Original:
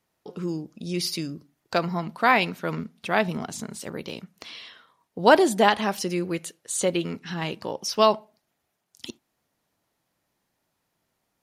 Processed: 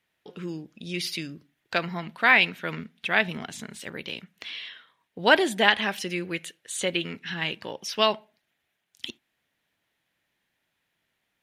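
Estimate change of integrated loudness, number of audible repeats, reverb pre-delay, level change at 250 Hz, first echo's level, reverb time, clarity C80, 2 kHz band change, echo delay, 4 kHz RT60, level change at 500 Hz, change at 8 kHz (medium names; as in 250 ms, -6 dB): -0.5 dB, no echo, no reverb, -5.0 dB, no echo, no reverb, no reverb, +4.5 dB, no echo, no reverb, -5.0 dB, -5.0 dB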